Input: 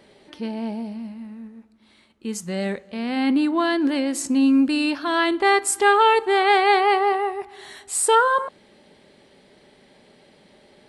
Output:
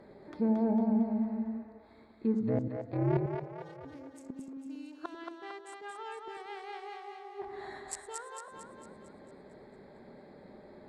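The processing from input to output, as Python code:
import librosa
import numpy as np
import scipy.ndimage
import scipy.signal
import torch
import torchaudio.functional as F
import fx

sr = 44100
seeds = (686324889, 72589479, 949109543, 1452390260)

y = fx.wiener(x, sr, points=15)
y = fx.gate_flip(y, sr, shuts_db=-19.0, range_db=-28)
y = fx.env_lowpass_down(y, sr, base_hz=1400.0, full_db=-27.0)
y = fx.ring_mod(y, sr, carrier_hz=fx.line((2.39, 56.0), (3.84, 210.0)), at=(2.39, 3.84), fade=0.02)
y = fx.bandpass_edges(y, sr, low_hz=130.0, high_hz=7300.0, at=(5.15, 6.17))
y = fx.echo_split(y, sr, split_hz=410.0, low_ms=89, high_ms=226, feedback_pct=52, wet_db=-3.5)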